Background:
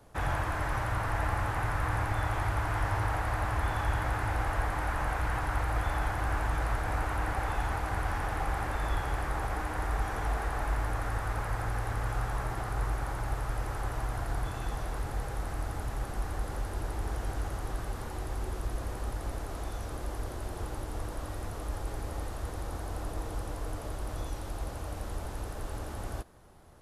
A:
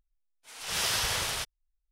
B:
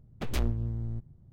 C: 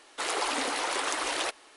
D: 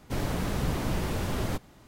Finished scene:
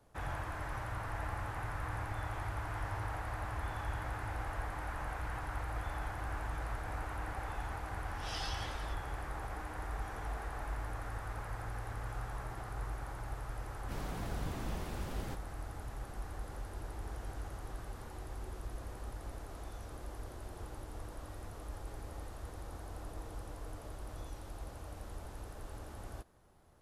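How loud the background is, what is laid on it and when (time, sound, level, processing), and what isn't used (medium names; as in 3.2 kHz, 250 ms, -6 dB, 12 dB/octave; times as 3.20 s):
background -9 dB
7.50 s: add A -12 dB + spectral contrast expander 2.5:1
13.78 s: add D -12.5 dB + tape noise reduction on one side only decoder only
not used: B, C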